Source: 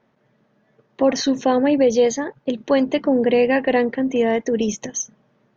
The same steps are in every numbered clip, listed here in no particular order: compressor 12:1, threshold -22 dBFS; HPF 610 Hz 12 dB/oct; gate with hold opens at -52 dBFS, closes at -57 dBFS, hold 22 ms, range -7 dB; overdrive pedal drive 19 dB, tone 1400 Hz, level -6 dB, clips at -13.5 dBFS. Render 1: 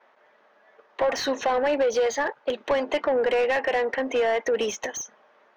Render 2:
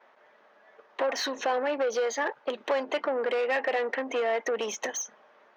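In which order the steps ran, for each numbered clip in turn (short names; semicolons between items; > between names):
HPF > compressor > overdrive pedal > gate with hold; compressor > overdrive pedal > HPF > gate with hold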